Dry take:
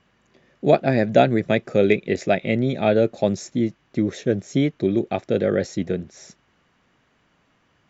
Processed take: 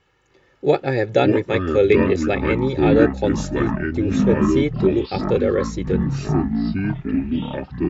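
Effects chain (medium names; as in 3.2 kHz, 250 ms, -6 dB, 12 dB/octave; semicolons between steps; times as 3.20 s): comb 2.3 ms, depth 80%; ever faster or slower copies 302 ms, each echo -6 st, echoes 3; trim -1.5 dB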